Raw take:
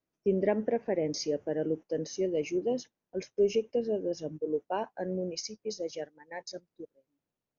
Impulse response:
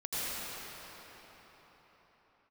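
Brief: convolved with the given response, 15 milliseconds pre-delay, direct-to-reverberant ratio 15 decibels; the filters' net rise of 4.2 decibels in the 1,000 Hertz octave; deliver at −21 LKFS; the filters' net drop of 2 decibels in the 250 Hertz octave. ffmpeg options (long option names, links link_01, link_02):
-filter_complex "[0:a]equalizer=frequency=250:width_type=o:gain=-3.5,equalizer=frequency=1000:width_type=o:gain=6,asplit=2[link_01][link_02];[1:a]atrim=start_sample=2205,adelay=15[link_03];[link_02][link_03]afir=irnorm=-1:irlink=0,volume=-22.5dB[link_04];[link_01][link_04]amix=inputs=2:normalize=0,volume=11.5dB"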